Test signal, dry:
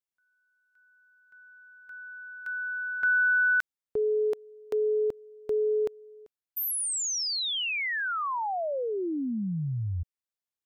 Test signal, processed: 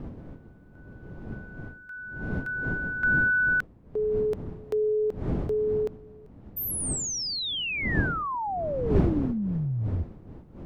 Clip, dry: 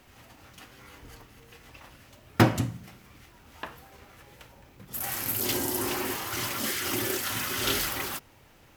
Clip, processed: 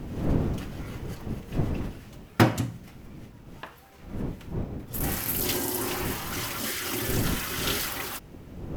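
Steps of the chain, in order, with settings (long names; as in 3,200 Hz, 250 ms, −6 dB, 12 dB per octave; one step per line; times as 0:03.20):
wind on the microphone 220 Hz −35 dBFS
speech leveller within 4 dB 2 s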